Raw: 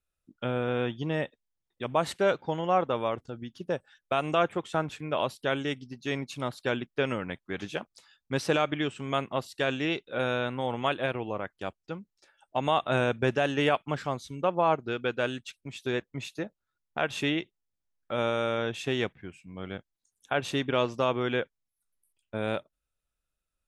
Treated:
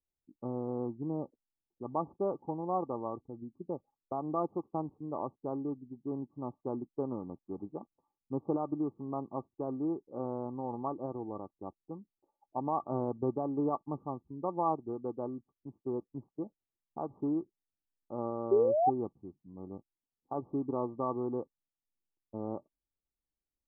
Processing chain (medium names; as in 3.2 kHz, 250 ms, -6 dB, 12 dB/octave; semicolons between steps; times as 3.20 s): local Wiener filter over 25 samples; painted sound rise, 18.51–18.90 s, 380–800 Hz -18 dBFS; rippled Chebyshev low-pass 1.2 kHz, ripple 9 dB; trim -1 dB